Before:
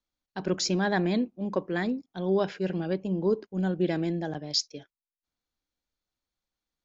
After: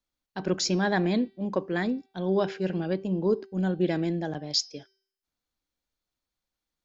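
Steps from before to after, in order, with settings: de-hum 386.9 Hz, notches 16; trim +1 dB

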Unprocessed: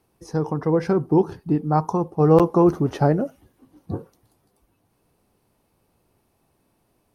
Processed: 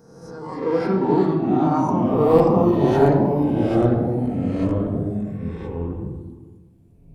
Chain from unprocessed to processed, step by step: reverse spectral sustain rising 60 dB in 1.15 s; spectral noise reduction 11 dB; reverberation RT60 0.90 s, pre-delay 4 ms, DRR 1 dB; ever faster or slower copies 226 ms, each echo -3 st, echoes 3; trim -4.5 dB

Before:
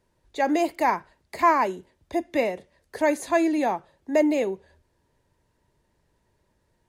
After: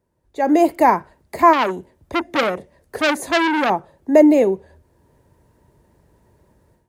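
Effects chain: high-pass 43 Hz; peaking EQ 3.7 kHz -10.5 dB 2.8 oct; level rider gain up to 14.5 dB; 1.53–3.70 s: transformer saturation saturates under 2.4 kHz

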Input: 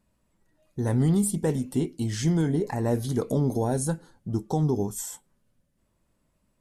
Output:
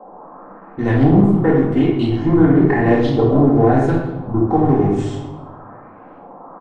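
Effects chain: companding laws mixed up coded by A; low-pass 9.1 kHz 24 dB/octave; comb 2.8 ms, depth 54%; band noise 180–1100 Hz -53 dBFS; LFO low-pass saw up 0.97 Hz 750–3300 Hz; simulated room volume 430 m³, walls mixed, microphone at 2.1 m; loudspeaker Doppler distortion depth 0.2 ms; trim +5.5 dB

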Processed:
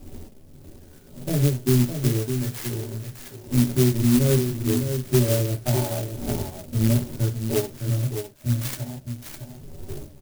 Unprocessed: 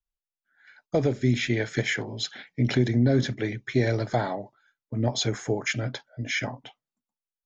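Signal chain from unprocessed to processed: wind noise 320 Hz -39 dBFS; low-pass 3.2 kHz 24 dB/octave; harmonic-percussive split percussive -18 dB; transient shaper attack +6 dB, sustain -8 dB; tempo 0.73×; peak limiter -16.5 dBFS, peak gain reduction 7.5 dB; delay 609 ms -7.5 dB; reverberation RT60 0.15 s, pre-delay 3 ms, DRR -2 dB; sampling jitter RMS 0.15 ms; trim -1.5 dB

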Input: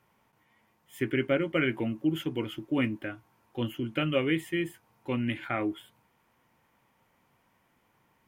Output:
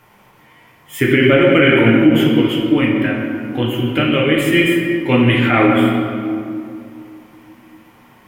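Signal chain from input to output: treble shelf 3.7 kHz +11 dB; 2.09–4.38 s: compression 2:1, threshold -36 dBFS, peak gain reduction 8.5 dB; tone controls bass -1 dB, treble -9 dB; reverberation RT60 2.5 s, pre-delay 6 ms, DRR -3 dB; loudness maximiser +16 dB; trim -1 dB

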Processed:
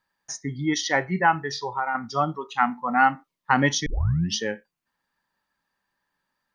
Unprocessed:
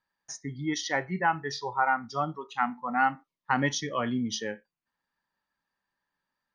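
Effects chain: 1.43–1.95 s: compression 2.5:1, threshold -33 dBFS, peak gain reduction 9 dB; 3.86 s: tape start 0.50 s; trim +6 dB

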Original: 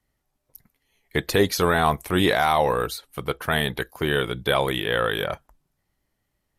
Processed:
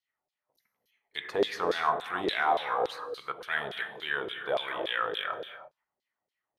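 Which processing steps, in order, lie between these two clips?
gated-style reverb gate 360 ms flat, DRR 5 dB; LFO band-pass saw down 3.5 Hz 480–4400 Hz; trim -1.5 dB

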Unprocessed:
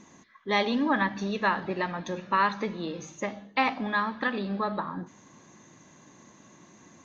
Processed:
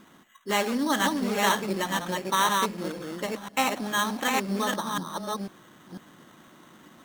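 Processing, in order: chunks repeated in reverse 498 ms, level -2 dB; peaking EQ 93 Hz -5.5 dB 1.2 oct; sample-and-hold 9×; loudspeaker Doppler distortion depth 0.11 ms

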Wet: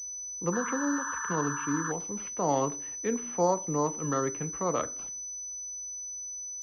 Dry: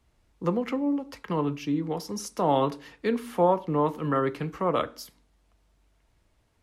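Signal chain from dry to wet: painted sound noise, 0.52–1.92 s, 900–1800 Hz -32 dBFS; class-D stage that switches slowly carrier 6 kHz; trim -4 dB

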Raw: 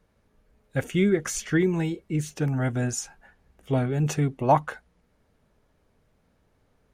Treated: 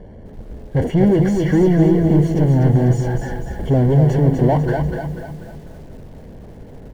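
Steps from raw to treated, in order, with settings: gate -57 dBFS, range -33 dB; power-law waveshaper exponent 0.35; in parallel at -3 dB: saturation -21 dBFS, distortion -10 dB; on the sum: boxcar filter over 35 samples; on a send: feedback delay 245 ms, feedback 44%, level -6 dB; on the sum: bit-crushed delay 251 ms, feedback 35%, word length 7-bit, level -11 dB

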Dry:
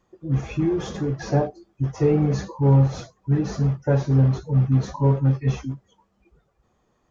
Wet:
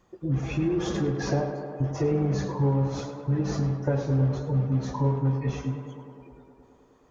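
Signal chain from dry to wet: compression 2.5:1, threshold -30 dBFS, peak gain reduction 11.5 dB; tape echo 104 ms, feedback 88%, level -7 dB, low-pass 2.5 kHz; trim +3.5 dB

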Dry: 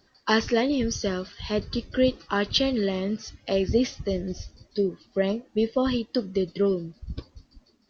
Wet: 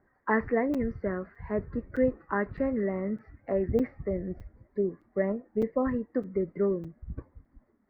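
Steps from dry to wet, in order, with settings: elliptic low-pass 2 kHz, stop band 40 dB; crackling interface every 0.61 s, samples 256, zero, from 0.74 s; trim -3 dB

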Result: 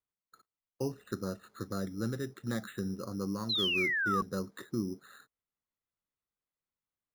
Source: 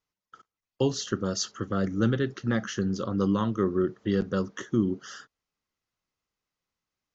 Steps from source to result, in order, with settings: gain riding 0.5 s; careless resampling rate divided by 8×, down filtered, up hold; painted sound fall, 3.49–4.22 s, 1.1–4.2 kHz -22 dBFS; trim -9 dB

